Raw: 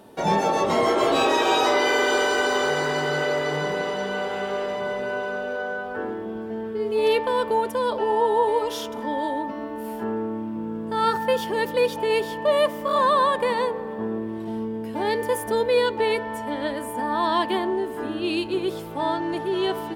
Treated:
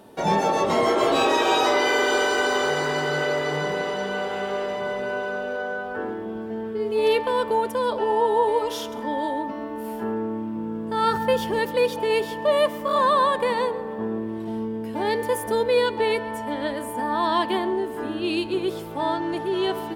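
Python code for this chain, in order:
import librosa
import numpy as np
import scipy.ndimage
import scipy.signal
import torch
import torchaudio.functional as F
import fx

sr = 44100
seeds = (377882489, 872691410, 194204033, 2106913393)

y = fx.low_shelf(x, sr, hz=130.0, db=11.5, at=(11.11, 11.59))
y = y + 10.0 ** (-21.0 / 20.0) * np.pad(y, (int(136 * sr / 1000.0), 0))[:len(y)]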